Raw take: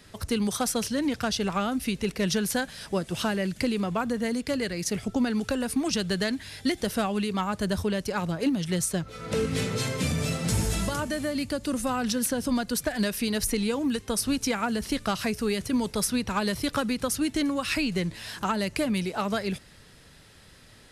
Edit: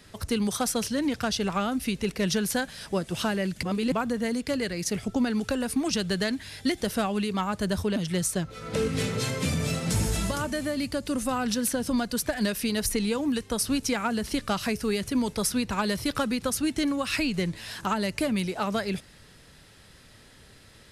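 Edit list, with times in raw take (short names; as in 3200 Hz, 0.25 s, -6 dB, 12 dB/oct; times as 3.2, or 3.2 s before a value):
3.63–3.92 reverse
7.96–8.54 cut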